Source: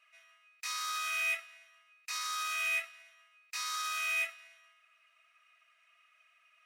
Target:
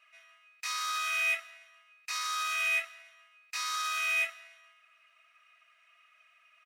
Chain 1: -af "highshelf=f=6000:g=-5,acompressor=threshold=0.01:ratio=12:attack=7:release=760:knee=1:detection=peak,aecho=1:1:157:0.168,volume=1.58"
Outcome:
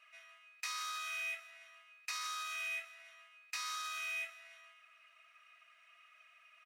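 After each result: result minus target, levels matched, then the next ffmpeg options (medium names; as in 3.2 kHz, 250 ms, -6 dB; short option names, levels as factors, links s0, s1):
compression: peak gain reduction +12.5 dB; echo-to-direct +8.5 dB
-af "highshelf=f=6000:g=-5,aecho=1:1:157:0.168,volume=1.58"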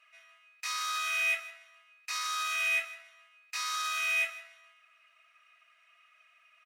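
echo-to-direct +8.5 dB
-af "highshelf=f=6000:g=-5,aecho=1:1:157:0.0631,volume=1.58"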